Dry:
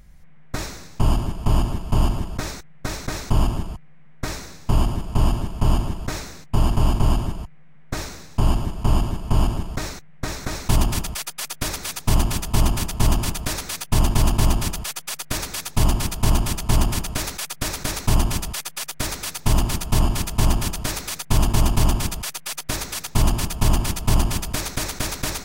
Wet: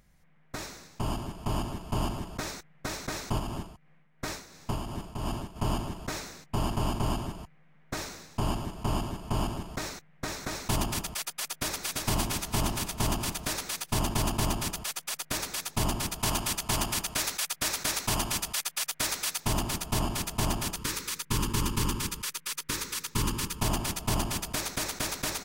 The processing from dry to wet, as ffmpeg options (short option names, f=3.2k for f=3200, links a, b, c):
-filter_complex "[0:a]asplit=3[a][b][c];[a]afade=t=out:st=3.38:d=0.02[d];[b]tremolo=f=2.8:d=0.55,afade=t=in:st=3.38:d=0.02,afade=t=out:st=5.55:d=0.02[e];[c]afade=t=in:st=5.55:d=0.02[f];[d][e][f]amix=inputs=3:normalize=0,asplit=2[g][h];[h]afade=t=in:st=11.49:d=0.01,afade=t=out:st=11.97:d=0.01,aecho=0:1:340|680|1020|1360|1700|2040|2380|2720|3060:0.630957|0.378574|0.227145|0.136287|0.0817721|0.0490632|0.0294379|0.0176628|0.0105977[i];[g][i]amix=inputs=2:normalize=0,asettb=1/sr,asplit=3[j][k][l];[j]atrim=end=16.194[m];[k]atrim=start=16.19:end=19.46,asetpts=PTS-STARTPTS,afade=t=in:d=0.004:c=qsin,afade=t=out:st=3.266:d=0.004:c=qsin,tiltshelf=f=760:g=-3.5[n];[l]atrim=start=19.456[o];[m][n]acrossfade=d=0.004:c1=hsin:c2=qsin[p];[p][o]acrossfade=d=0.004:c1=qsin:c2=hsin,asettb=1/sr,asplit=3[q][r][s];[q]atrim=end=20.764[t];[r]atrim=start=20.76:end=23.61,asetpts=PTS-STARTPTS,afade=t=in:d=0.004:c=qsin,afade=t=out:st=2.846:d=0.004:c=qsin,asuperstop=centerf=690:order=4:qfactor=1.8[u];[s]atrim=start=23.606[v];[t][u]acrossfade=d=0.004:c1=hsin:c2=qsin[w];[w][v]acrossfade=d=0.004:c1=qsin:c2=hsin,lowshelf=f=110:g=-12,dynaudnorm=f=170:g=17:m=3dB,volume=-7.5dB"